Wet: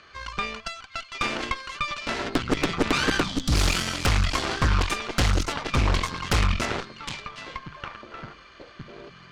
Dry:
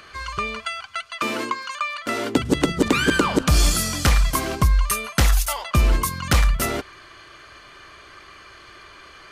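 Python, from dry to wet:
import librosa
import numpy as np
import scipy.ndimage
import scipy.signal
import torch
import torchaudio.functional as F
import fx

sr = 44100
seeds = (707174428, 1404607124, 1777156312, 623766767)

y = scipy.signal.sosfilt(scipy.signal.butter(4, 6300.0, 'lowpass', fs=sr, output='sos'), x)
y = fx.echo_stepped(y, sr, ms=761, hz=3100.0, octaves=-1.4, feedback_pct=70, wet_db=-2.0)
y = fx.cheby_harmonics(y, sr, harmonics=(6,), levels_db=(-9,), full_scale_db=-6.5)
y = fx.spec_box(y, sr, start_s=3.23, length_s=0.29, low_hz=320.0, high_hz=3000.0, gain_db=-12)
y = fx.doppler_dist(y, sr, depth_ms=0.18)
y = y * 10.0 ** (-6.5 / 20.0)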